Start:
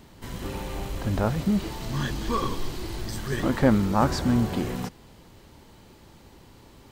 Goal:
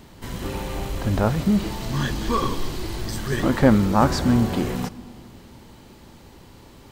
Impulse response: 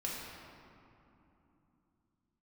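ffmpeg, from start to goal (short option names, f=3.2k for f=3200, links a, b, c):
-filter_complex "[0:a]asplit=2[a][b];[1:a]atrim=start_sample=2205,adelay=48[c];[b][c]afir=irnorm=-1:irlink=0,volume=-22dB[d];[a][d]amix=inputs=2:normalize=0,volume=4dB"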